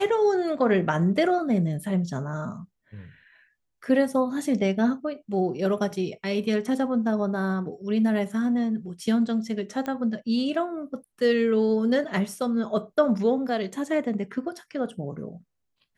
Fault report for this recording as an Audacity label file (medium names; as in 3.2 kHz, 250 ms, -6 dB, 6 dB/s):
9.860000	9.860000	pop -19 dBFS